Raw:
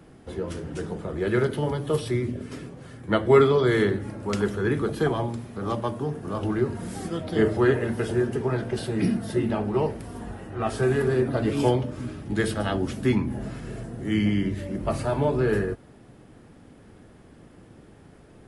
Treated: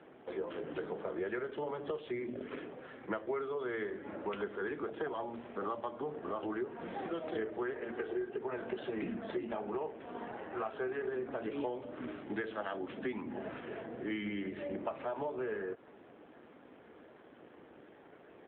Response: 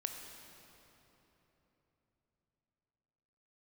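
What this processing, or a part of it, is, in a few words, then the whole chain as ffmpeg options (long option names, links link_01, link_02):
voicemail: -filter_complex "[0:a]bandreject=frequency=4800:width=12,asplit=3[link_01][link_02][link_03];[link_01]afade=type=out:start_time=7.91:duration=0.02[link_04];[link_02]aecho=1:1:2.6:0.57,afade=type=in:start_time=7.91:duration=0.02,afade=type=out:start_time=8.38:duration=0.02[link_05];[link_03]afade=type=in:start_time=8.38:duration=0.02[link_06];[link_04][link_05][link_06]amix=inputs=3:normalize=0,highpass=400,lowpass=3300,acompressor=threshold=-35dB:ratio=10,volume=1.5dB" -ar 8000 -c:a libopencore_amrnb -b:a 7400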